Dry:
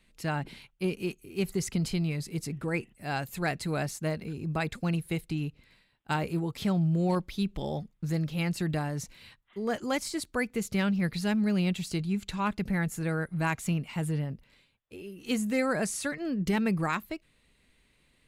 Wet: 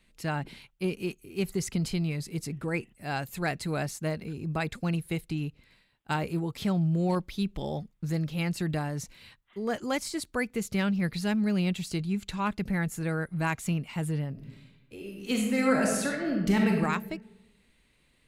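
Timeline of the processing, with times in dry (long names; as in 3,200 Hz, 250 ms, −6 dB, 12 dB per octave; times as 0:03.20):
0:14.30–0:16.76: thrown reverb, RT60 1.1 s, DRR 0 dB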